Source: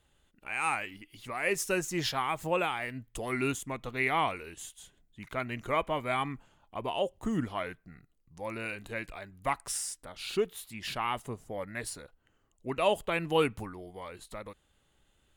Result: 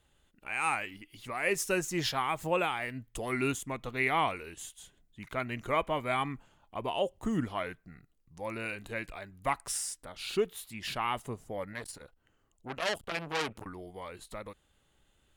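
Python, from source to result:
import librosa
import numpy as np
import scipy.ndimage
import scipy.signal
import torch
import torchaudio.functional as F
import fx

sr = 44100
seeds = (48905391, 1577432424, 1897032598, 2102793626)

y = fx.transformer_sat(x, sr, knee_hz=3900.0, at=(11.73, 13.66))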